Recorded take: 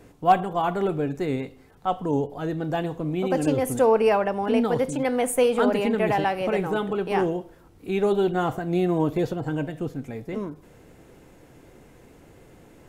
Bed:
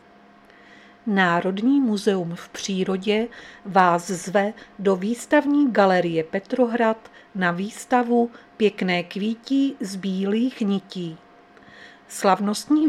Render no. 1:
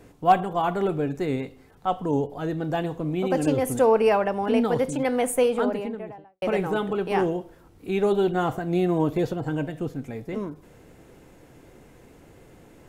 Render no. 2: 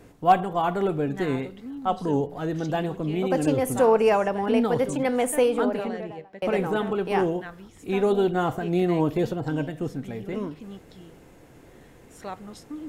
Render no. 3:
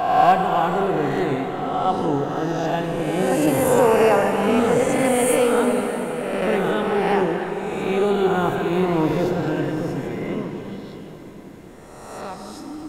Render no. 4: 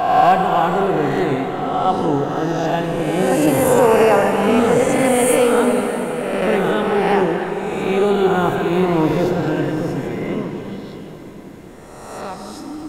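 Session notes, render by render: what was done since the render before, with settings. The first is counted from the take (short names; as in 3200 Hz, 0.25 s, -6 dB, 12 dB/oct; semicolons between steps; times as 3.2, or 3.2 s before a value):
5.21–6.42 studio fade out
add bed -18.5 dB
spectral swells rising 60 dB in 1.48 s; plate-style reverb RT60 4.8 s, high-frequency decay 0.8×, DRR 4 dB
gain +3.5 dB; limiter -3 dBFS, peak gain reduction 3 dB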